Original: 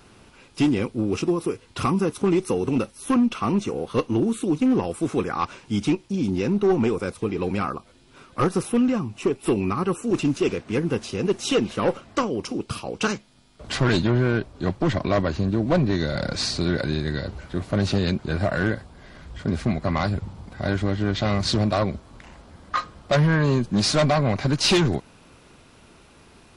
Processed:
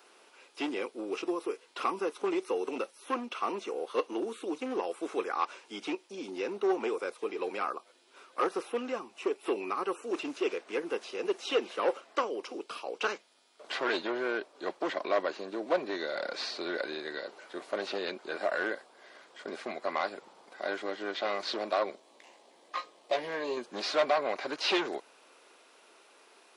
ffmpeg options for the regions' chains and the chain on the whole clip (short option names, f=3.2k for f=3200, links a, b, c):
-filter_complex "[0:a]asettb=1/sr,asplit=3[a][b][c];[a]atrim=end=21.954[d];[b]atrim=start=21.95:end=23.57,asetpts=PTS-STARTPTS,afade=t=in:d=0.004:c=qsin,afade=t=out:st=1.616:d=0.004:c=qsin,aeval=exprs='if(lt(val(0),0),0.708*val(0),val(0))':c=same,equalizer=f=1.4k:t=o:w=0.48:g=-14,asplit=2[e][f];[f]adelay=17,volume=-7.5dB[g];[e][g]amix=inputs=2:normalize=0,atrim=end_sample=71442[h];[c]atrim=start=23.566[i];[d][h]acrossfade=d=0.004:c1=hsin:c2=qsin[j];[j][i]acrossfade=d=0.004:c1=qsin:c2=hsin,highpass=f=390:w=0.5412,highpass=f=390:w=1.3066,acrossover=split=4300[k][l];[l]acompressor=threshold=-50dB:ratio=4:attack=1:release=60[m];[k][m]amix=inputs=2:normalize=0,volume=-5dB"